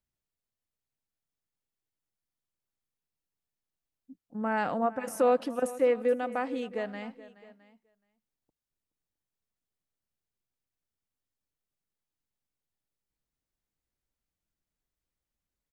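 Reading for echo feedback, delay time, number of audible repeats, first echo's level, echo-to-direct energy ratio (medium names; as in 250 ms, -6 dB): no regular repeats, 424 ms, 2, -17.5 dB, -16.0 dB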